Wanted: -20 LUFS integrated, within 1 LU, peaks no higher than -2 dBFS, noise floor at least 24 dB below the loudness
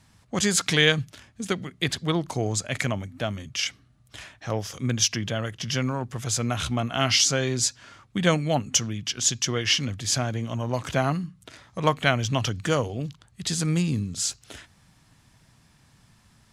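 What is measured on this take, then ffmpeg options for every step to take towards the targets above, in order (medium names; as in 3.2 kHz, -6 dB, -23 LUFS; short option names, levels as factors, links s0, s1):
loudness -25.5 LUFS; peak level -4.0 dBFS; loudness target -20.0 LUFS
-> -af "volume=1.88,alimiter=limit=0.794:level=0:latency=1"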